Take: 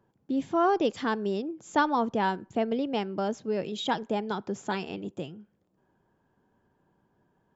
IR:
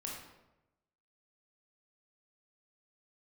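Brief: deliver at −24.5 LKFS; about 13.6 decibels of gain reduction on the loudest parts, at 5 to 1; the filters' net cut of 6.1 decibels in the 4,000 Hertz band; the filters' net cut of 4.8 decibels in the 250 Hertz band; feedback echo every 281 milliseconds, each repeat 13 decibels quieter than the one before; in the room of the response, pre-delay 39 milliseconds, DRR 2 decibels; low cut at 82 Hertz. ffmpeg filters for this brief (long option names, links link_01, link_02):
-filter_complex "[0:a]highpass=82,equalizer=frequency=250:width_type=o:gain=-6,equalizer=frequency=4000:width_type=o:gain=-8,acompressor=threshold=-36dB:ratio=5,aecho=1:1:281|562|843:0.224|0.0493|0.0108,asplit=2[link_01][link_02];[1:a]atrim=start_sample=2205,adelay=39[link_03];[link_02][link_03]afir=irnorm=-1:irlink=0,volume=-1.5dB[link_04];[link_01][link_04]amix=inputs=2:normalize=0,volume=13.5dB"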